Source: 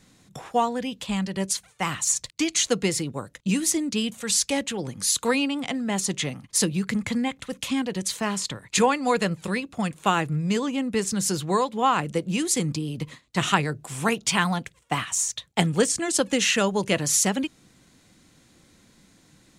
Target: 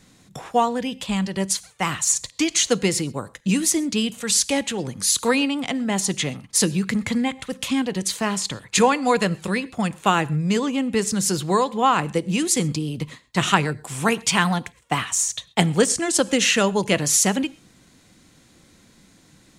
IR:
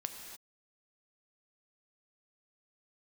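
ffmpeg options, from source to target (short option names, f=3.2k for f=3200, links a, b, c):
-filter_complex "[0:a]asplit=2[a][b];[1:a]atrim=start_sample=2205,atrim=end_sample=6174[c];[b][c]afir=irnorm=-1:irlink=0,volume=-8.5dB[d];[a][d]amix=inputs=2:normalize=0,volume=1dB"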